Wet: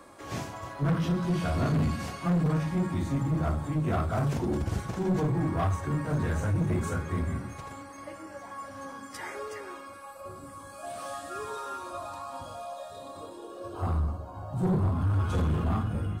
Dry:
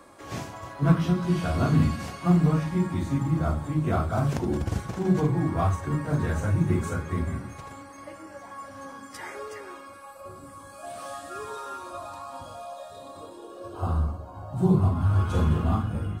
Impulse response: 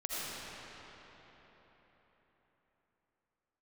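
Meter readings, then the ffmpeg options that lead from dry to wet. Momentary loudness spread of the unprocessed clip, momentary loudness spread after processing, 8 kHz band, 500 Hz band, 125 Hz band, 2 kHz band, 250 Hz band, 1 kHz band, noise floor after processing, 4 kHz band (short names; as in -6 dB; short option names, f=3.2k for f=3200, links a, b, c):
20 LU, 16 LU, -1.0 dB, -2.5 dB, -3.5 dB, -1.5 dB, -4.0 dB, -2.0 dB, -45 dBFS, -1.5 dB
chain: -af "asoftclip=type=tanh:threshold=-21.5dB"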